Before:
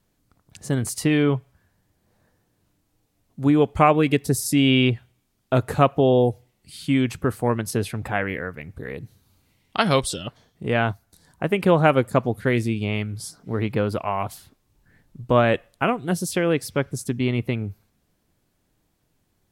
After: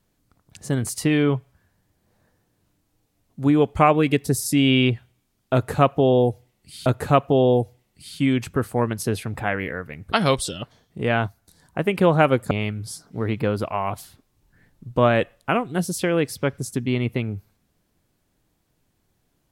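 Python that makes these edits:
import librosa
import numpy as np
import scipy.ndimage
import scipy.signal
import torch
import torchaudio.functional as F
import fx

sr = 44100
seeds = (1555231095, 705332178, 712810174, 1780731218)

y = fx.edit(x, sr, fx.repeat(start_s=5.54, length_s=1.32, count=2),
    fx.cut(start_s=8.8, length_s=0.97),
    fx.cut(start_s=12.16, length_s=0.68), tone=tone)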